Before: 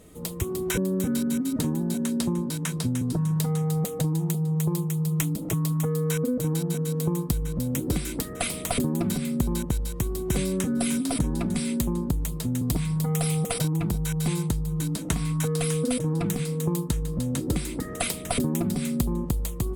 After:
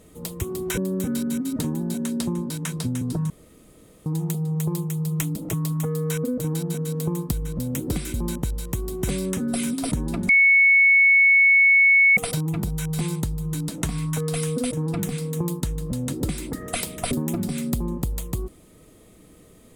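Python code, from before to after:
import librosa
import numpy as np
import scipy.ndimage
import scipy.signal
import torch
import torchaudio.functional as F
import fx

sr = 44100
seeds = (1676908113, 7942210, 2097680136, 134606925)

y = fx.edit(x, sr, fx.room_tone_fill(start_s=3.3, length_s=0.76),
    fx.cut(start_s=8.14, length_s=1.27),
    fx.bleep(start_s=11.56, length_s=1.88, hz=2210.0, db=-12.0), tone=tone)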